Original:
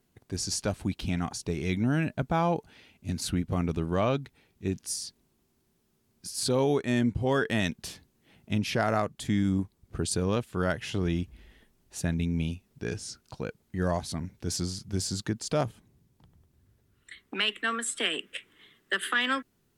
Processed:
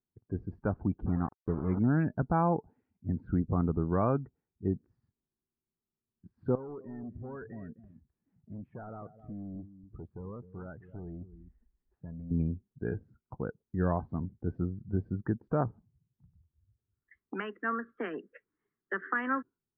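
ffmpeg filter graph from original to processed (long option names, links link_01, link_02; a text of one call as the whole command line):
ffmpeg -i in.wav -filter_complex "[0:a]asettb=1/sr,asplit=3[link_01][link_02][link_03];[link_01]atrim=end=1.064[link_04];[link_02]atrim=start=1.06:end=1.79,asetpts=PTS-STARTPTS,afade=type=in:duration=0.004:curve=qsin,afade=type=out:start_time=0.726:duration=0.004:curve=qsin,lowpass=1900,aeval=exprs='val(0)*gte(abs(val(0)),0.0211)':channel_layout=same[link_05];[link_03]atrim=start=1.786[link_06];[link_04][link_05]acrossfade=duration=0.004:curve1=hsin:curve2=qsin[link_07];[link_07][link_06]acrossfade=duration=0.004:curve1=qsin:curve2=hsin,asettb=1/sr,asplit=3[link_08][link_09][link_10];[link_08]atrim=end=6.554[link_11];[link_09]atrim=start=6.55:end=12.31,asetpts=PTS-STARTPTS,afade=type=in:duration=0.004:curve=qsin,afade=type=out:start_time=5.756:duration=0.004:curve=qsin,acompressor=threshold=-57dB:ratio=1.5:attack=3.2:release=140:knee=1:detection=peak,asoftclip=type=hard:threshold=-38dB,aecho=1:1:259:0.266,atrim=end_sample=254016[link_12];[link_10]atrim=start=12.306[link_13];[link_11][link_12]acrossfade=duration=0.004:curve1=hsin:curve2=qsin[link_14];[link_14][link_13]acrossfade=duration=0.004:curve1=qsin:curve2=hsin,lowpass=frequency=1500:width=0.5412,lowpass=frequency=1500:width=1.3066,afftdn=noise_reduction=22:noise_floor=-47,equalizer=frequency=600:width_type=o:width=0.41:gain=-5" out.wav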